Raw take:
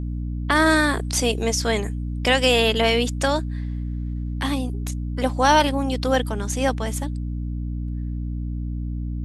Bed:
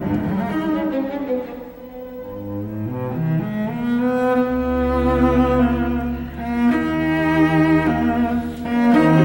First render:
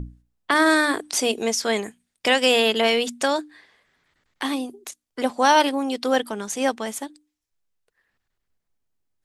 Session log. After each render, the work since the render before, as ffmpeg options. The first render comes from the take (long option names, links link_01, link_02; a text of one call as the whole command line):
ffmpeg -i in.wav -af "bandreject=frequency=60:width_type=h:width=6,bandreject=frequency=120:width_type=h:width=6,bandreject=frequency=180:width_type=h:width=6,bandreject=frequency=240:width_type=h:width=6,bandreject=frequency=300:width_type=h:width=6" out.wav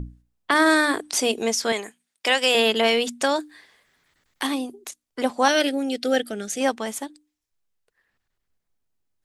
ffmpeg -i in.wav -filter_complex "[0:a]asettb=1/sr,asplit=3[link_01][link_02][link_03];[link_01]atrim=end=1.724[link_04];[link_02]atrim=start=1.72:end=2.55,asetpts=PTS-STARTPTS,afade=type=in:duration=0.004:curve=qsin,afade=type=out:start_time=0.826:duration=0.004:curve=qsin,highpass=frequency=570:poles=1[link_05];[link_03]atrim=start=2.546[link_06];[link_04][link_05]acrossfade=duration=0.004:curve1=hsin:curve2=qsin[link_07];[link_07][link_06]acrossfade=duration=0.004:curve1=qsin:curve2=hsin,asettb=1/sr,asplit=3[link_08][link_09][link_10];[link_08]atrim=end=3.404[link_11];[link_09]atrim=start=3.4:end=4.47,asetpts=PTS-STARTPTS,afade=type=in:duration=0.004:curve=qsin,afade=type=out:start_time=1.066:duration=0.004:curve=qsin,highshelf=frequency=6600:gain=11.5[link_12];[link_10]atrim=start=4.466[link_13];[link_11][link_12]acrossfade=duration=0.004:curve1=hsin:curve2=qsin[link_14];[link_14][link_13]acrossfade=duration=0.004:curve1=qsin:curve2=hsin,asettb=1/sr,asplit=3[link_15][link_16][link_17];[link_15]atrim=end=5.484[link_18];[link_16]atrim=start=5.48:end=6.61,asetpts=PTS-STARTPTS,afade=type=in:duration=0.004:curve=qsin,afade=type=out:start_time=1.126:duration=0.004:curve=qsin,asuperstop=centerf=1000:order=4:qfactor=1.6[link_19];[link_17]atrim=start=6.606[link_20];[link_18][link_19]acrossfade=duration=0.004:curve1=hsin:curve2=qsin[link_21];[link_21][link_20]acrossfade=duration=0.004:curve1=qsin:curve2=hsin" out.wav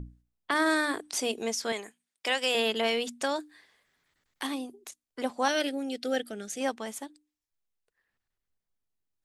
ffmpeg -i in.wav -af "volume=-8dB" out.wav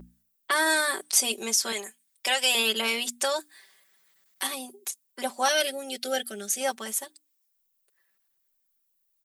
ffmpeg -i in.wav -af "aemphasis=mode=production:type=bsi,aecho=1:1:5.2:0.83" out.wav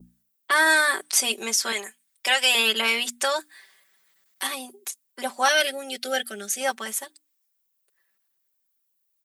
ffmpeg -i in.wav -af "highpass=80,adynamicequalizer=threshold=0.0126:dfrequency=1700:dqfactor=0.7:tfrequency=1700:tqfactor=0.7:attack=5:release=100:ratio=0.375:range=3.5:mode=boostabove:tftype=bell" out.wav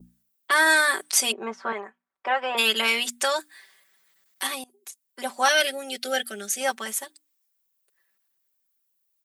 ffmpeg -i in.wav -filter_complex "[0:a]asplit=3[link_01][link_02][link_03];[link_01]afade=type=out:start_time=1.31:duration=0.02[link_04];[link_02]lowpass=frequency=1100:width_type=q:width=1.9,afade=type=in:start_time=1.31:duration=0.02,afade=type=out:start_time=2.57:duration=0.02[link_05];[link_03]afade=type=in:start_time=2.57:duration=0.02[link_06];[link_04][link_05][link_06]amix=inputs=3:normalize=0,asplit=2[link_07][link_08];[link_07]atrim=end=4.64,asetpts=PTS-STARTPTS,afade=type=out:start_time=4.636:duration=0.004:curve=hsin:silence=0.0891251[link_09];[link_08]atrim=start=4.64,asetpts=PTS-STARTPTS,afade=type=in:duration=0.73:silence=0.0891251[link_10];[link_09][link_10]concat=n=2:v=0:a=1" out.wav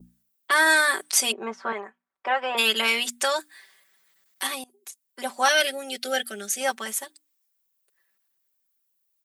ffmpeg -i in.wav -af anull out.wav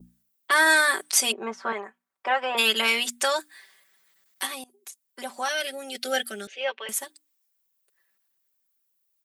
ffmpeg -i in.wav -filter_complex "[0:a]asettb=1/sr,asplit=3[link_01][link_02][link_03];[link_01]atrim=end=1.524[link_04];[link_02]atrim=start=1.52:end=2.45,asetpts=PTS-STARTPTS,afade=type=in:duration=0.004:curve=qsin,afade=type=out:start_time=0.926:duration=0.004:curve=qsin,highshelf=frequency=5200:gain=5.5[link_05];[link_03]atrim=start=2.446[link_06];[link_04][link_05]acrossfade=duration=0.004:curve1=hsin:curve2=qsin[link_07];[link_07][link_06]acrossfade=duration=0.004:curve1=qsin:curve2=hsin,asettb=1/sr,asplit=3[link_08][link_09][link_10];[link_08]atrim=end=4.454[link_11];[link_09]atrim=start=4.45:end=5.95,asetpts=PTS-STARTPTS,afade=type=in:duration=0.004:curve=qsin,afade=type=out:start_time=1.496:duration=0.004:curve=qsin,acompressor=threshold=-37dB:ratio=1.5:attack=3.2:release=140:knee=1:detection=peak[link_12];[link_10]atrim=start=5.946[link_13];[link_11][link_12]acrossfade=duration=0.004:curve1=hsin:curve2=qsin[link_14];[link_14][link_13]acrossfade=duration=0.004:curve1=qsin:curve2=hsin,asettb=1/sr,asplit=3[link_15][link_16][link_17];[link_15]atrim=end=6.474[link_18];[link_16]atrim=start=6.47:end=6.89,asetpts=PTS-STARTPTS,afade=type=in:duration=0.004:curve=qsin,afade=type=out:start_time=0.416:duration=0.004:curve=qsin,highpass=frequency=440:width=0.5412,highpass=frequency=440:width=1.3066,equalizer=frequency=460:width_type=q:width=4:gain=5,equalizer=frequency=750:width_type=q:width=4:gain=-10,equalizer=frequency=1300:width_type=q:width=4:gain=-8,equalizer=frequency=1800:width_type=q:width=4:gain=-4,equalizer=frequency=2800:width_type=q:width=4:gain=7,lowpass=frequency=3200:width=0.5412,lowpass=frequency=3200:width=1.3066[link_19];[link_17]atrim=start=6.886[link_20];[link_18][link_19]acrossfade=duration=0.004:curve1=hsin:curve2=qsin[link_21];[link_21][link_20]acrossfade=duration=0.004:curve1=qsin:curve2=hsin" out.wav